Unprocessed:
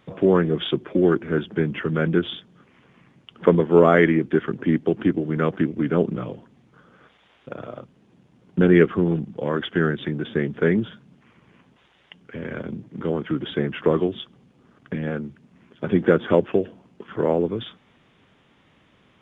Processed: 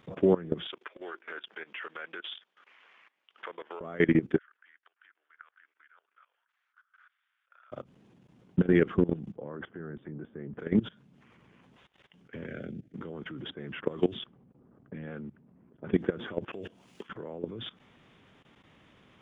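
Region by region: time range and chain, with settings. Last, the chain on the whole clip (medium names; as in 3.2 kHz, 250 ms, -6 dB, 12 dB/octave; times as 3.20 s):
0.67–3.81 s: tilt EQ +4.5 dB/octave + compression 3:1, threshold -30 dBFS + band-pass 590–2700 Hz
4.38–7.72 s: distance through air 89 m + compression 2:1, threshold -36 dBFS + ladder high-pass 1.3 kHz, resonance 60%
9.36–10.59 s: low-pass 1.3 kHz + hum notches 60/120/180 Hz
12.46–12.94 s: Butterworth band-stop 1 kHz, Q 1.7 + level held to a coarse grid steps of 12 dB
13.50–16.03 s: treble shelf 2.2 kHz +6 dB + level-controlled noise filter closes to 620 Hz, open at -16 dBFS
16.53–17.09 s: treble shelf 2.6 kHz +11.5 dB + compression 3:1, threshold -21 dBFS + tape noise reduction on one side only encoder only
whole clip: peak limiter -11.5 dBFS; level held to a coarse grid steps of 20 dB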